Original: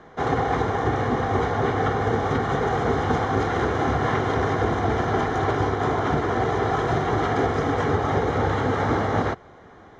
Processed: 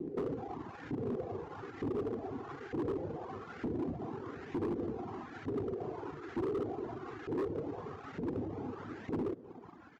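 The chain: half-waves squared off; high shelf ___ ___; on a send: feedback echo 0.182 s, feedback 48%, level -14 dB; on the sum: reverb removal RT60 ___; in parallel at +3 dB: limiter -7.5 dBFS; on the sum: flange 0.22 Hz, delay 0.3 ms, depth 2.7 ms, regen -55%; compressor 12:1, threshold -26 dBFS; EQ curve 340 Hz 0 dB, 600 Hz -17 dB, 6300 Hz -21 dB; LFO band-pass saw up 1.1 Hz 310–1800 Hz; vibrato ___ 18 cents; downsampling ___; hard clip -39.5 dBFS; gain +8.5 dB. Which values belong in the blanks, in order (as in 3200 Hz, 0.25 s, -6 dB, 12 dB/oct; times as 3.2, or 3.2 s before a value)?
5600 Hz, +11 dB, 0.78 s, 1.7 Hz, 16000 Hz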